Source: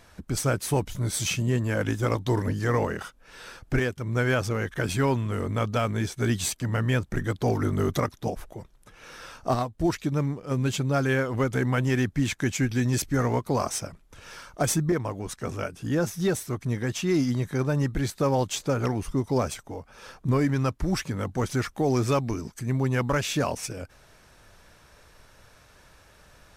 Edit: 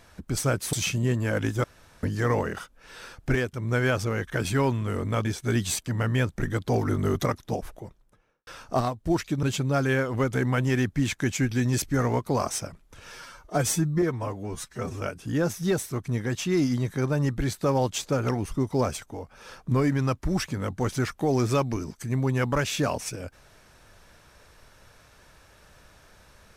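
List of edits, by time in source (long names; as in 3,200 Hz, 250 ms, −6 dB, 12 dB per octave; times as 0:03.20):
0:00.73–0:01.17: remove
0:02.08–0:02.47: fill with room tone
0:05.69–0:05.99: remove
0:08.42–0:09.21: fade out and dull
0:10.17–0:10.63: remove
0:14.32–0:15.58: time-stretch 1.5×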